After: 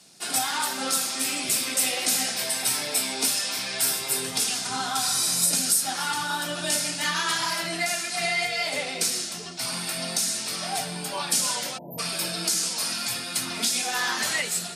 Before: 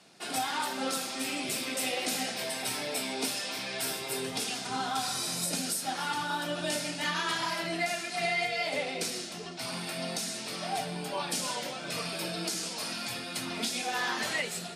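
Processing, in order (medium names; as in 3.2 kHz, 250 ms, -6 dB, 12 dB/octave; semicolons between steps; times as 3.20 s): tone controls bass +5 dB, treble +14 dB; spectral selection erased 11.78–11.99 s, 1–12 kHz; dynamic bell 1.4 kHz, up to +7 dB, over -46 dBFS, Q 0.7; trim -2 dB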